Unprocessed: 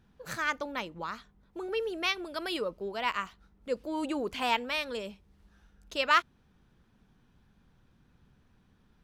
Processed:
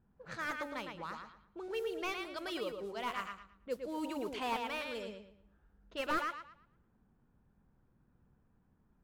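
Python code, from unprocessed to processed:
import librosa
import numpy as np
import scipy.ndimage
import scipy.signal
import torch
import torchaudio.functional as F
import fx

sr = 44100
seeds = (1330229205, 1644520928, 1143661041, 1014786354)

p1 = fx.mod_noise(x, sr, seeds[0], snr_db=24)
p2 = fx.env_lowpass(p1, sr, base_hz=1200.0, full_db=-30.5)
p3 = p2 + fx.echo_tape(p2, sr, ms=113, feedback_pct=31, wet_db=-5.0, lp_hz=4500.0, drive_db=16.0, wow_cents=27, dry=0)
p4 = fx.slew_limit(p3, sr, full_power_hz=85.0)
y = p4 * 10.0 ** (-6.5 / 20.0)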